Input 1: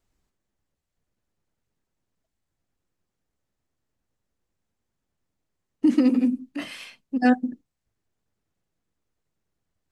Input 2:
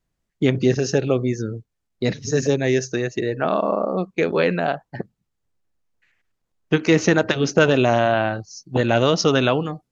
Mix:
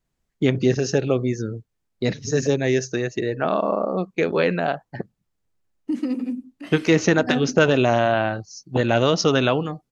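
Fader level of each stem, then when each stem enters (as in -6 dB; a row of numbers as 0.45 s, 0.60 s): -6.0 dB, -1.0 dB; 0.05 s, 0.00 s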